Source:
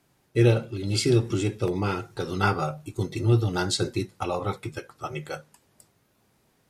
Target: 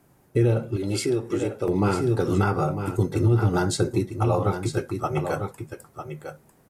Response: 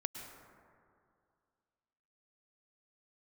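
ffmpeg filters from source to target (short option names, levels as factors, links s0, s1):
-filter_complex "[0:a]equalizer=f=3800:t=o:w=2:g=-11.5,aecho=1:1:950:0.335,alimiter=limit=0.1:level=0:latency=1:release=324,asettb=1/sr,asplit=3[s0][s1][s2];[s0]atrim=end=0.764[s3];[s1]atrim=start=0.76:end=1.68,asetpts=PTS-STARTPTS,afade=t=in:d=0.004:c=qsin,afade=t=out:st=0.916:d=0.004:c=qsin,bass=f=250:g=-11,treble=f=4000:g=-2[s4];[s2]atrim=start=1.676[s5];[s3][s4]acrossfade=d=0.004:c1=hsin:c2=qsin[s6];[s6][s5]acrossfade=d=0.004:c1=qsin:c2=hsin,volume=2.66"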